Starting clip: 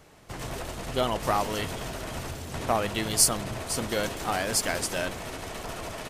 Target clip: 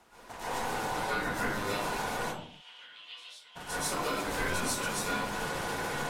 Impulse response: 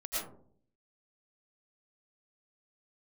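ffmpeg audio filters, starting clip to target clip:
-filter_complex "[0:a]acompressor=threshold=0.0282:ratio=6,aeval=exprs='val(0)*sin(2*PI*820*n/s)':c=same,asplit=3[s0][s1][s2];[s0]afade=t=out:st=2.16:d=0.02[s3];[s1]bandpass=f=3100:t=q:w=7.3:csg=0,afade=t=in:st=2.16:d=0.02,afade=t=out:st=3.55:d=0.02[s4];[s2]afade=t=in:st=3.55:d=0.02[s5];[s3][s4][s5]amix=inputs=3:normalize=0[s6];[1:a]atrim=start_sample=2205,afade=t=out:st=0.39:d=0.01,atrim=end_sample=17640,asetrate=33957,aresample=44100[s7];[s6][s7]afir=irnorm=-1:irlink=0"

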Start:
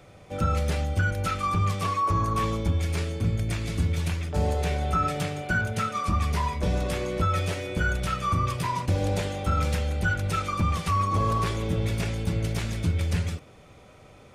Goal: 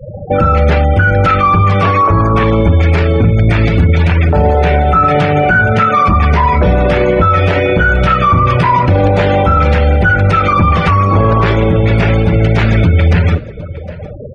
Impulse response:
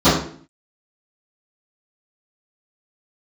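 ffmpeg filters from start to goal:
-filter_complex "[0:a]afftfilt=real='re*gte(hypot(re,im),0.0112)':imag='im*gte(hypot(re,im),0.0112)':win_size=1024:overlap=0.75,lowpass=2000,lowshelf=f=480:g=-6.5,bandreject=f=1100:w=10,asplit=2[s0][s1];[s1]acompressor=threshold=0.00891:ratio=12,volume=1.19[s2];[s0][s2]amix=inputs=2:normalize=0,aecho=1:1:759:0.0668,acontrast=74,alimiter=level_in=10:limit=0.891:release=50:level=0:latency=1,volume=0.841"

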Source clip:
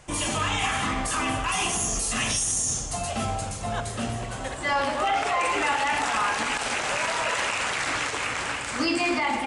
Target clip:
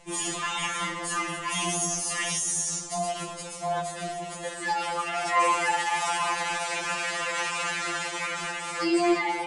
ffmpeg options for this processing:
-filter_complex "[0:a]asettb=1/sr,asplit=3[s0][s1][s2];[s0]atrim=end=4.254[s3];[s1]atrim=start=4.25:end=6.32,asetpts=PTS-STARTPTS,afade=t=in:d=0.004:c=qsin,afade=t=out:st=2.066:d=0.004:c=qsin,highshelf=f=8100:g=8[s4];[s2]atrim=start=6.316[s5];[s3][s4]acrossfade=d=0.004:c1=hsin:c2=qsin[s6];[s6][s5]acrossfade=d=0.004:c1=qsin:c2=hsin,afftfilt=real='re*2.83*eq(mod(b,8),0)':imag='im*2.83*eq(mod(b,8),0)':win_size=2048:overlap=0.75"

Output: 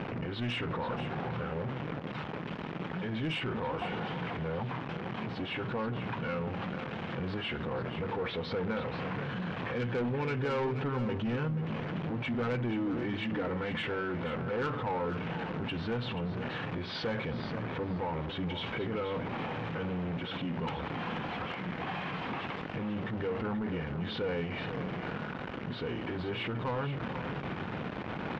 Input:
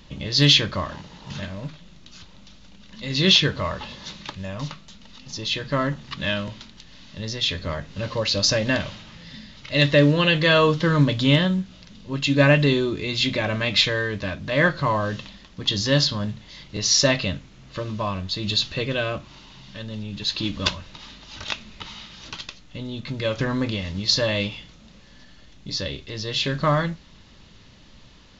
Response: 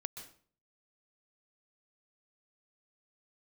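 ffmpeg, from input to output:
-filter_complex "[0:a]aeval=exprs='val(0)+0.5*0.0891*sgn(val(0))':c=same,highpass=180,lowpass=2200,aemphasis=mode=reproduction:type=75fm,asoftclip=type=tanh:threshold=0.141,alimiter=level_in=1.58:limit=0.0631:level=0:latency=1:release=177,volume=0.631,asetrate=37084,aresample=44100,atempo=1.18921,asplit=2[s0][s1];[s1]aecho=0:1:481|962:0.299|0.0508[s2];[s0][s2]amix=inputs=2:normalize=0"

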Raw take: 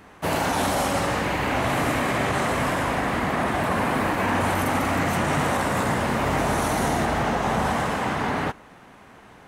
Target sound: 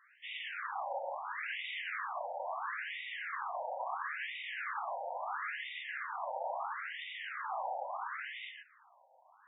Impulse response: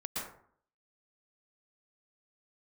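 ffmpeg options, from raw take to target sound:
-filter_complex "[0:a]aemphasis=mode=production:type=75fm[s0];[1:a]atrim=start_sample=2205,afade=t=out:st=0.16:d=0.01,atrim=end_sample=7497[s1];[s0][s1]afir=irnorm=-1:irlink=0,afftfilt=real='re*between(b*sr/1024,670*pow(2700/670,0.5+0.5*sin(2*PI*0.74*pts/sr))/1.41,670*pow(2700/670,0.5+0.5*sin(2*PI*0.74*pts/sr))*1.41)':imag='im*between(b*sr/1024,670*pow(2700/670,0.5+0.5*sin(2*PI*0.74*pts/sr))/1.41,670*pow(2700/670,0.5+0.5*sin(2*PI*0.74*pts/sr))*1.41)':win_size=1024:overlap=0.75,volume=0.447"

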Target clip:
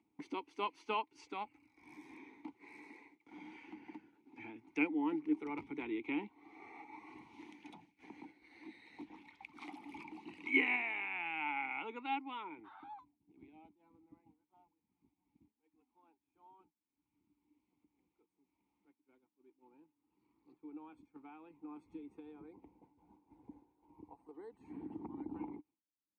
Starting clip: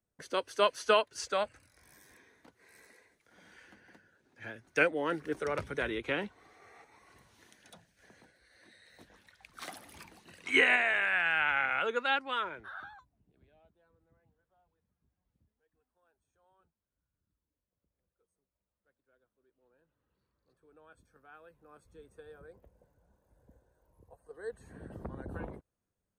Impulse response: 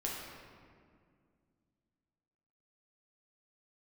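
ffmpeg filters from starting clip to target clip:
-filter_complex "[0:a]agate=range=0.0224:threshold=0.001:ratio=3:detection=peak,acompressor=mode=upward:threshold=0.02:ratio=2.5,asplit=3[s0][s1][s2];[s0]bandpass=f=300:t=q:w=8,volume=1[s3];[s1]bandpass=f=870:t=q:w=8,volume=0.501[s4];[s2]bandpass=f=2240:t=q:w=8,volume=0.355[s5];[s3][s4][s5]amix=inputs=3:normalize=0,volume=2.11"

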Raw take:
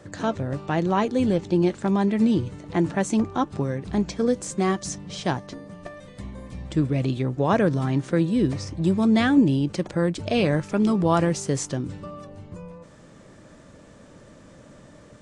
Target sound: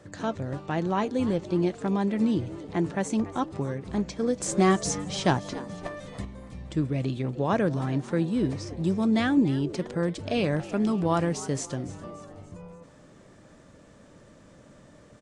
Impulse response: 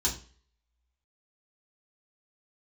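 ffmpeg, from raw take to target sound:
-filter_complex "[0:a]asplit=5[s0][s1][s2][s3][s4];[s1]adelay=287,afreqshift=100,volume=0.133[s5];[s2]adelay=574,afreqshift=200,volume=0.0653[s6];[s3]adelay=861,afreqshift=300,volume=0.032[s7];[s4]adelay=1148,afreqshift=400,volume=0.0157[s8];[s0][s5][s6][s7][s8]amix=inputs=5:normalize=0,asettb=1/sr,asplit=3[s9][s10][s11];[s9]atrim=end=4.404[s12];[s10]atrim=start=4.4:end=6.25,asetpts=PTS-STARTPTS,afade=t=in:d=0.004:c=qsin,afade=t=out:st=1.846:d=0.004:c=qsin,acontrast=80[s13];[s11]atrim=start=6.246[s14];[s12][s13]acrossfade=d=0.004:c1=hsin:c2=qsin[s15];[s15][s14]acrossfade=d=0.004:c1=qsin:c2=hsin,volume=0.596"

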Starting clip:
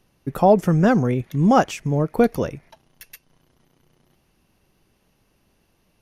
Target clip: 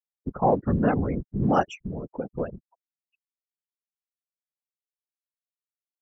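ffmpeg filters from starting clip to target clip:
-filter_complex "[0:a]asplit=3[s0][s1][s2];[s0]afade=t=out:st=1.74:d=0.02[s3];[s1]acompressor=threshold=0.0708:ratio=16,afade=t=in:st=1.74:d=0.02,afade=t=out:st=2.3:d=0.02[s4];[s2]afade=t=in:st=2.3:d=0.02[s5];[s3][s4][s5]amix=inputs=3:normalize=0,afftfilt=real='re*gte(hypot(re,im),0.0501)':imag='im*gte(hypot(re,im),0.0501)':win_size=1024:overlap=0.75,afftfilt=real='hypot(re,im)*cos(2*PI*random(0))':imag='hypot(re,im)*sin(2*PI*random(1))':win_size=512:overlap=0.75"

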